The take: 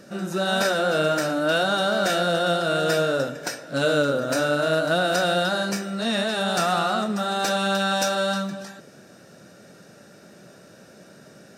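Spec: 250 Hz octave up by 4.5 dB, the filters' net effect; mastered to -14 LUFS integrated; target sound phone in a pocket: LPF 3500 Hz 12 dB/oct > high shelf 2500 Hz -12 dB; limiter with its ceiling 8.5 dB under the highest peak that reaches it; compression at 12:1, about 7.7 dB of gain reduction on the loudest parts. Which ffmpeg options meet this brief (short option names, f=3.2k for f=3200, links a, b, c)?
-af "equalizer=f=250:t=o:g=6.5,acompressor=threshold=-24dB:ratio=12,alimiter=limit=-23dB:level=0:latency=1,lowpass=3.5k,highshelf=f=2.5k:g=-12,volume=18.5dB"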